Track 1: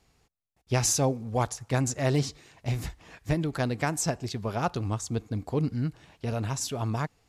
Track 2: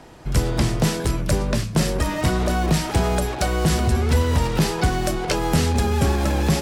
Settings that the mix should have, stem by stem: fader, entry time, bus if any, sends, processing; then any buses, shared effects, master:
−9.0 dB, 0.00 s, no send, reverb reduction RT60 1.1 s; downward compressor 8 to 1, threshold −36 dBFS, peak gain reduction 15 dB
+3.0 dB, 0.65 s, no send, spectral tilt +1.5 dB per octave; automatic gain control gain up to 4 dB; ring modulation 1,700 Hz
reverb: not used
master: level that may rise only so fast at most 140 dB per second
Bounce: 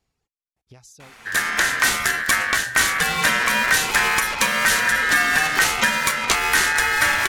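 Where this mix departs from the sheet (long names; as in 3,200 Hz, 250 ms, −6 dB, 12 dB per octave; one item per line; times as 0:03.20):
stem 2: entry 0.65 s → 1.00 s
master: missing level that may rise only so fast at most 140 dB per second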